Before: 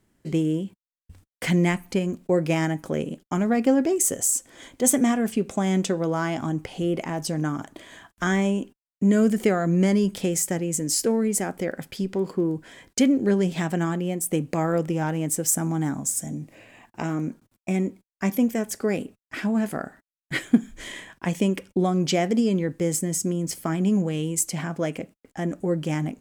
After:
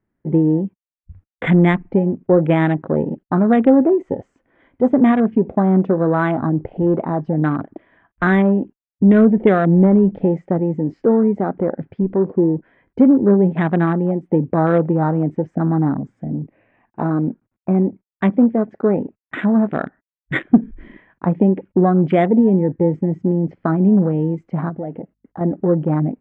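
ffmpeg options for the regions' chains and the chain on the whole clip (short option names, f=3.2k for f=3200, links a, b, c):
-filter_complex "[0:a]asettb=1/sr,asplit=3[a][b][c];[a]atrim=end=24.694[d];[b]atrim=start=24.69:end=25.41,asetpts=PTS-STARTPTS,afade=t=in:d=0.004:c=qsin,afade=t=out:st=0.716:d=0.004:c=qsin,bandreject=f=2.4k:w=6.6,acompressor=threshold=-35dB:ratio=2.5:attack=3.2:release=140:knee=1:detection=peak,aeval=exprs='val(0)+0.000355*(sin(2*PI*50*n/s)+sin(2*PI*2*50*n/s)/2+sin(2*PI*3*50*n/s)/3+sin(2*PI*4*50*n/s)/4+sin(2*PI*5*50*n/s)/5)':c=same[e];[c]atrim=start=25.406[f];[d][e]acrossfade=d=0.004:c1=hsin:c2=qsin[g];[g][f]acrossfade=d=0.004:c1=qsin:c2=hsin,lowpass=f=2.1k:w=0.5412,lowpass=f=2.1k:w=1.3066,acontrast=69,afwtdn=0.0398,volume=2dB"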